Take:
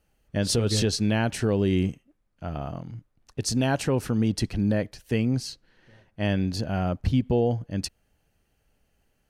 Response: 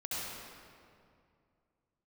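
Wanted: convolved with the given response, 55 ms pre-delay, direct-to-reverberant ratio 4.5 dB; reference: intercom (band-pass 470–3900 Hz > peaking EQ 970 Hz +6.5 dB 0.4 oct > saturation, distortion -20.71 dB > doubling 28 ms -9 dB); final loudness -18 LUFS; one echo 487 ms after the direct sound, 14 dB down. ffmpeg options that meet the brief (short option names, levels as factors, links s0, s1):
-filter_complex "[0:a]aecho=1:1:487:0.2,asplit=2[s0][s1];[1:a]atrim=start_sample=2205,adelay=55[s2];[s1][s2]afir=irnorm=-1:irlink=0,volume=0.398[s3];[s0][s3]amix=inputs=2:normalize=0,highpass=470,lowpass=3900,equalizer=f=970:t=o:w=0.4:g=6.5,asoftclip=threshold=0.133,asplit=2[s4][s5];[s5]adelay=28,volume=0.355[s6];[s4][s6]amix=inputs=2:normalize=0,volume=5.01"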